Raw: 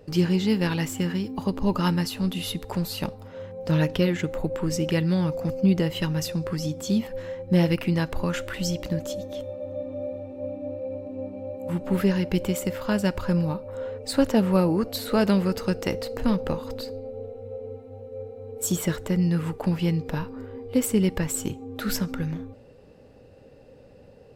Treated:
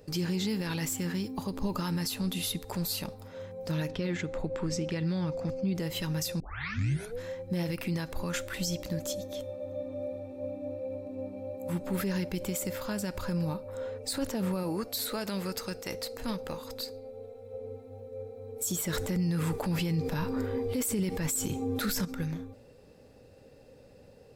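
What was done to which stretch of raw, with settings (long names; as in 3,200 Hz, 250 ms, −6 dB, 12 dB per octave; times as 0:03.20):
0:03.91–0:05.75: high-frequency loss of the air 89 metres
0:06.40: tape start 0.82 s
0:14.63–0:17.54: low-shelf EQ 490 Hz −7 dB
0:18.93–0:22.05: clip gain +10.5 dB
whole clip: high-shelf EQ 3,800 Hz +10 dB; notch filter 2,900 Hz, Q 13; brickwall limiter −18 dBFS; level −4.5 dB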